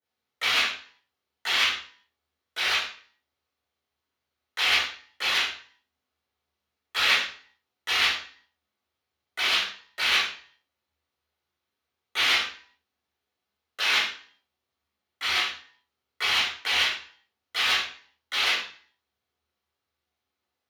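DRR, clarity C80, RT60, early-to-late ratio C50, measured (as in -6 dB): -11.5 dB, 7.0 dB, 0.45 s, 2.0 dB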